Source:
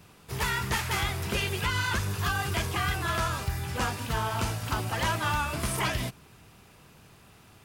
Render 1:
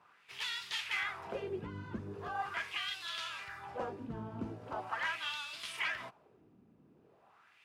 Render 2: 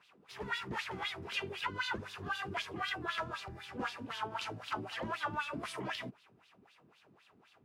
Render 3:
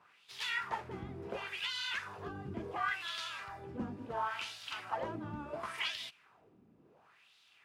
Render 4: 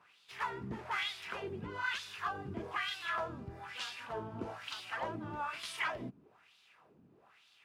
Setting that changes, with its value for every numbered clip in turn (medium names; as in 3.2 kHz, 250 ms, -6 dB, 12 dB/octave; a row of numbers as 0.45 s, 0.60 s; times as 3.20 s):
wah-wah, rate: 0.41 Hz, 3.9 Hz, 0.71 Hz, 1.1 Hz